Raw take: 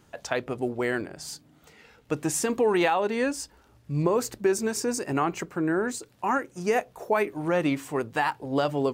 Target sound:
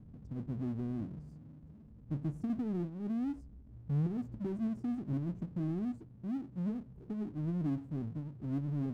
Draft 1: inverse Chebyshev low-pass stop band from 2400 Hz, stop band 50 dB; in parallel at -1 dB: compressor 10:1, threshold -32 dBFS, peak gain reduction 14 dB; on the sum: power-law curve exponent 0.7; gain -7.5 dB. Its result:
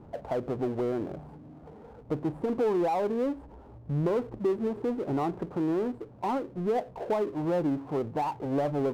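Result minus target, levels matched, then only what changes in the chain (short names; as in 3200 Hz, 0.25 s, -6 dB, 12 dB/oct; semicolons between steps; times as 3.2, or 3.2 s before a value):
500 Hz band +12.0 dB
change: inverse Chebyshev low-pass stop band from 620 Hz, stop band 50 dB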